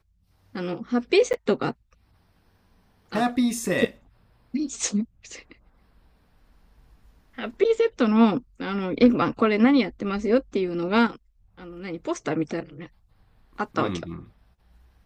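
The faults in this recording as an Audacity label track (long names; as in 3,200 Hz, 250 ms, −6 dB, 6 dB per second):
1.330000	1.340000	drop-out 9 ms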